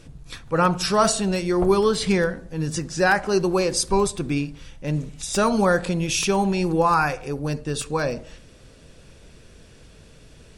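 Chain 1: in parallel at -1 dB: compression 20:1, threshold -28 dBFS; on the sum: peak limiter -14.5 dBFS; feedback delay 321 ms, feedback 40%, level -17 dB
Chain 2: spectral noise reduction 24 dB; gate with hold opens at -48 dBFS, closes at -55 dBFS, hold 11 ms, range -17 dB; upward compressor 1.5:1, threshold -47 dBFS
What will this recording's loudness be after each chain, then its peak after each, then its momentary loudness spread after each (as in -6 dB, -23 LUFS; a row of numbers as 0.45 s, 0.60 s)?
-24.0 LUFS, -22.0 LUFS; -13.0 dBFS, -6.0 dBFS; 13 LU, 9 LU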